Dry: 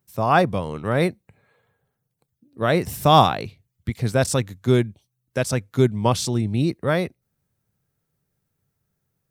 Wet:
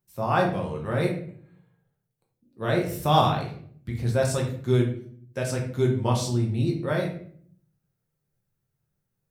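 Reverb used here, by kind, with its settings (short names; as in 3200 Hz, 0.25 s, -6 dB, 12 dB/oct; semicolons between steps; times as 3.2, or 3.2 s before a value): shoebox room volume 71 m³, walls mixed, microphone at 0.85 m; gain -9 dB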